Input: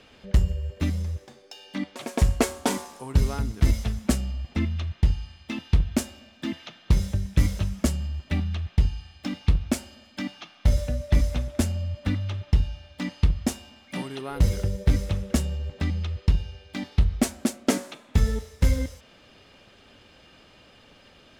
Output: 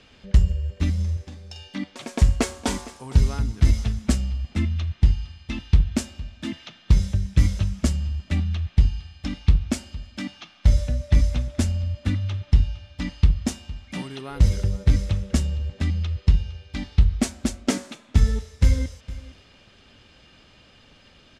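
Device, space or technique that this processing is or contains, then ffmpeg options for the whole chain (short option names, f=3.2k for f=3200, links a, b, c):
smiley-face EQ: -filter_complex "[0:a]lowpass=6.9k,lowshelf=f=170:g=4.5,equalizer=f=540:t=o:w=2:g=-3.5,highshelf=f=6.5k:g=7,asettb=1/sr,asplit=3[a][b][c];[a]atrim=end=0.944[d];[b]atrim=start=0.94:end=1.68,asetpts=PTS-STARTPTS,afade=t=in:d=0.004:c=qsin,afade=t=out:st=0.736:d=0.004:c=qsin,asplit=2[e][f];[f]adelay=46,volume=-7.5dB[g];[e][g]amix=inputs=2:normalize=0,atrim=end_sample=32634[h];[c]atrim=start=1.676[i];[d][h]acrossfade=d=0.004:c1=hsin:c2=qsin[j];[j][i]acrossfade=d=0.004:c1=qsin:c2=hsin,aecho=1:1:460:0.126"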